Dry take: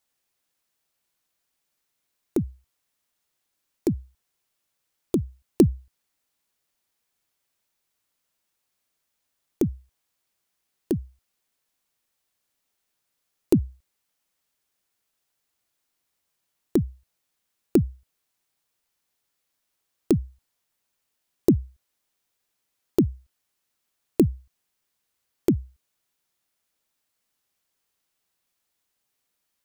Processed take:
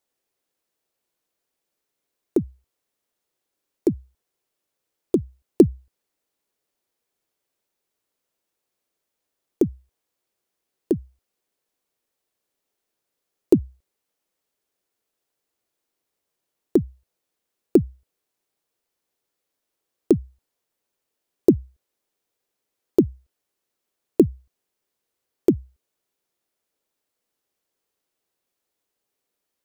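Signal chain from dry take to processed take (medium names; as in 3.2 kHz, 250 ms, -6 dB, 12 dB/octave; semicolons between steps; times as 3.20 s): peaking EQ 420 Hz +10 dB 1.5 oct; trim -4 dB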